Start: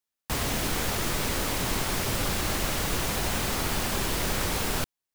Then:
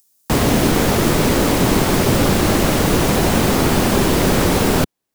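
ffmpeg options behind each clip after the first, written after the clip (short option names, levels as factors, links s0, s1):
-filter_complex "[0:a]equalizer=f=270:w=0.38:g=11,acrossover=split=130|1500|5400[s0][s1][s2][s3];[s3]acompressor=mode=upward:threshold=0.00355:ratio=2.5[s4];[s0][s1][s2][s4]amix=inputs=4:normalize=0,volume=2.37"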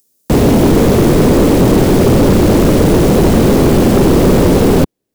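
-af "lowshelf=f=650:t=q:w=1.5:g=9,asoftclip=type=hard:threshold=0.562"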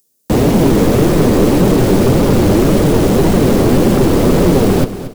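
-af "flanger=delay=4.8:depth=5.9:regen=48:speed=1.8:shape=triangular,aecho=1:1:231|462|693|924:0.224|0.0828|0.0306|0.0113,volume=1.26"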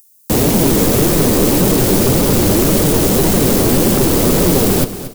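-af "crystalizer=i=3:c=0,volume=0.708"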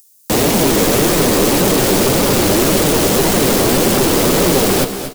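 -filter_complex "[0:a]asplit=2[s0][s1];[s1]highpass=f=720:p=1,volume=3.55,asoftclip=type=tanh:threshold=0.891[s2];[s0][s2]amix=inputs=2:normalize=0,lowpass=f=5500:p=1,volume=0.501,aecho=1:1:246:0.188"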